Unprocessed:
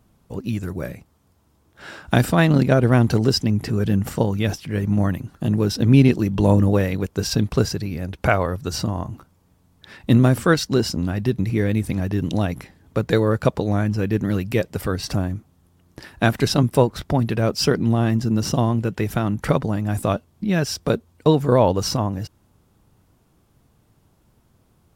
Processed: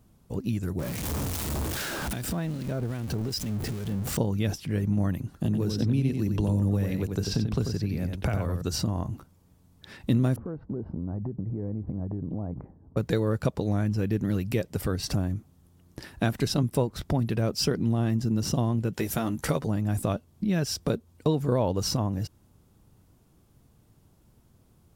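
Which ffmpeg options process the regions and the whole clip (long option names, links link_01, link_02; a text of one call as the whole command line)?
ffmpeg -i in.wav -filter_complex "[0:a]asettb=1/sr,asplit=3[link_01][link_02][link_03];[link_01]atrim=end=0.794[link_04];[link_02]atrim=start=0.79:end=4.17,asetpts=PTS-STARTPTS,afade=type=in:duration=0.004:curve=qsin,afade=type=out:start_time=3.376:duration=0.004:curve=qsin,aeval=exprs='val(0)+0.5*0.0944*sgn(val(0))':channel_layout=same,acompressor=threshold=-26dB:ratio=4:attack=3.2:release=140:knee=1:detection=peak,acrossover=split=1500[link_05][link_06];[link_05]aeval=exprs='val(0)*(1-0.5/2+0.5/2*cos(2*PI*2.5*n/s))':channel_layout=same[link_07];[link_06]aeval=exprs='val(0)*(1-0.5/2-0.5/2*cos(2*PI*2.5*n/s))':channel_layout=same[link_08];[link_07][link_08]amix=inputs=2:normalize=0[link_09];[link_03]atrim=start=4.166[link_10];[link_04][link_09]acrossfade=duration=0.004:curve1=hsin:curve2=qsin[link_11];[link_11][link_10]acrossfade=duration=0.004:curve1=qsin:curve2=hsin,asettb=1/sr,asplit=3[link_12][link_13][link_14];[link_12]atrim=end=5.454[link_15];[link_13]atrim=start=5.45:end=8.62,asetpts=PTS-STARTPTS,afade=type=in:duration=0.004:curve=qsin,afade=type=out:start_time=3.166:duration=0.004:curve=qsin,acrossover=split=250|5200[link_16][link_17][link_18];[link_16]acompressor=threshold=-18dB:ratio=4[link_19];[link_17]acompressor=threshold=-25dB:ratio=4[link_20];[link_18]acompressor=threshold=-45dB:ratio=4[link_21];[link_19][link_20][link_21]amix=inputs=3:normalize=0,aecho=1:1:90:0.473,atrim=end_sample=139797[link_22];[link_14]atrim=start=8.616[link_23];[link_15][link_22]acrossfade=duration=0.004:curve1=hsin:curve2=qsin[link_24];[link_24][link_23]acrossfade=duration=0.004:curve1=qsin:curve2=hsin,asettb=1/sr,asplit=3[link_25][link_26][link_27];[link_25]atrim=end=10.364[link_28];[link_26]atrim=start=10.36:end=12.97,asetpts=PTS-STARTPTS,afade=type=in:duration=0.004:curve=qsin,afade=type=out:start_time=2.606:duration=0.004:curve=qsin,lowpass=frequency=1000:width=0.5412,lowpass=frequency=1000:width=1.3066,acompressor=threshold=-27dB:ratio=10:attack=3.2:release=140:knee=1:detection=peak[link_29];[link_27]atrim=start=12.966[link_30];[link_28][link_29]acrossfade=duration=0.004:curve1=hsin:curve2=qsin[link_31];[link_31][link_30]acrossfade=duration=0.004:curve1=qsin:curve2=hsin,asettb=1/sr,asplit=3[link_32][link_33][link_34];[link_32]atrim=end=18.934[link_35];[link_33]atrim=start=18.93:end=19.67,asetpts=PTS-STARTPTS,afade=type=in:duration=0.004:curve=qsin,afade=type=out:start_time=0.736:duration=0.004:curve=qsin,bass=frequency=250:gain=-6,treble=frequency=4000:gain=6,asplit=2[link_36][link_37];[link_37]adelay=13,volume=-6dB[link_38];[link_36][link_38]amix=inputs=2:normalize=0,atrim=end_sample=32634[link_39];[link_34]atrim=start=19.666[link_40];[link_35][link_39]acrossfade=duration=0.004:curve1=hsin:curve2=qsin[link_41];[link_41][link_40]acrossfade=duration=0.004:curve1=qsin:curve2=hsin,equalizer=frequency=1400:width=0.37:gain=-5,acompressor=threshold=-26dB:ratio=2" out.wav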